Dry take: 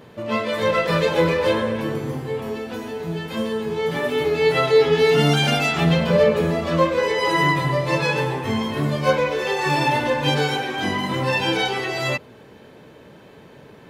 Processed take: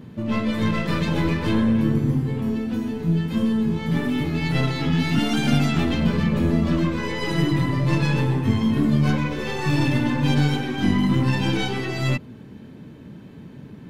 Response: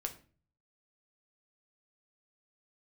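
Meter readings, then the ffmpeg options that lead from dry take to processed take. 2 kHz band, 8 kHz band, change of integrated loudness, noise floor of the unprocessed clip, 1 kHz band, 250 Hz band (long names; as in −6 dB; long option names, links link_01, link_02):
−6.0 dB, −4.0 dB, −1.5 dB, −46 dBFS, −8.0 dB, +5.0 dB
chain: -af "afftfilt=real='re*lt(hypot(re,im),0.708)':imag='im*lt(hypot(re,im),0.708)':win_size=1024:overlap=0.75,aeval=exprs='(tanh(5.01*val(0)+0.5)-tanh(0.5))/5.01':channel_layout=same,lowshelf=frequency=350:width_type=q:width=1.5:gain=11.5,volume=-2.5dB"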